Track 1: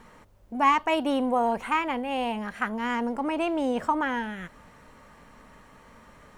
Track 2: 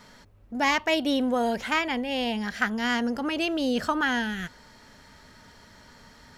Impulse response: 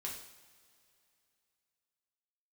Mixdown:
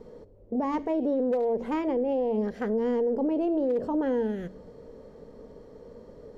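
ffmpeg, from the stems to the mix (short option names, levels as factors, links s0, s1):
-filter_complex "[0:a]lowpass=f=460:t=q:w=4.9,bandreject=f=46.93:t=h:w=4,bandreject=f=93.86:t=h:w=4,bandreject=f=140.79:t=h:w=4,bandreject=f=187.72:t=h:w=4,bandreject=f=234.65:t=h:w=4,bandreject=f=281.58:t=h:w=4,bandreject=f=328.51:t=h:w=4,volume=1.33,asplit=2[s0][s1];[1:a]volume=0.126,asplit=2[s2][s3];[s3]volume=0.211[s4];[s1]apad=whole_len=281167[s5];[s2][s5]sidechaincompress=threshold=0.0398:ratio=8:attack=36:release=181[s6];[2:a]atrim=start_sample=2205[s7];[s4][s7]afir=irnorm=-1:irlink=0[s8];[s0][s6][s8]amix=inputs=3:normalize=0,aeval=exprs='0.335*(cos(1*acos(clip(val(0)/0.335,-1,1)))-cos(1*PI/2))+0.00266*(cos(6*acos(clip(val(0)/0.335,-1,1)))-cos(6*PI/2))':c=same,alimiter=limit=0.1:level=0:latency=1:release=61"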